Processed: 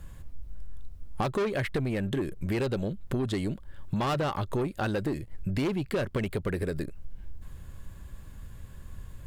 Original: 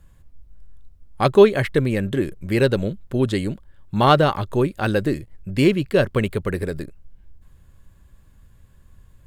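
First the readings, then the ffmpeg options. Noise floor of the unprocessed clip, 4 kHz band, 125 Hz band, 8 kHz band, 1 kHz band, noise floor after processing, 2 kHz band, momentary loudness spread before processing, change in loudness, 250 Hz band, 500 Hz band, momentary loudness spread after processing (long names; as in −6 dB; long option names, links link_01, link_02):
−53 dBFS, −11.0 dB, −8.5 dB, −6.5 dB, −11.5 dB, −47 dBFS, −10.0 dB, 14 LU, −11.0 dB, −9.0 dB, −12.5 dB, 20 LU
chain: -af "asoftclip=type=tanh:threshold=-17dB,acompressor=threshold=-35dB:ratio=6,volume=7dB"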